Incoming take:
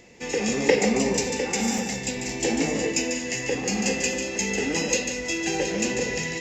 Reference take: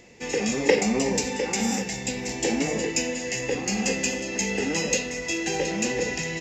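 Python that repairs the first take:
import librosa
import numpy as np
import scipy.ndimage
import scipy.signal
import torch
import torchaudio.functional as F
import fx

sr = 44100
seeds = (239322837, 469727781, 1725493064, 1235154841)

y = fx.fix_interpolate(x, sr, at_s=(1.78,), length_ms=2.9)
y = fx.fix_echo_inverse(y, sr, delay_ms=145, level_db=-7.0)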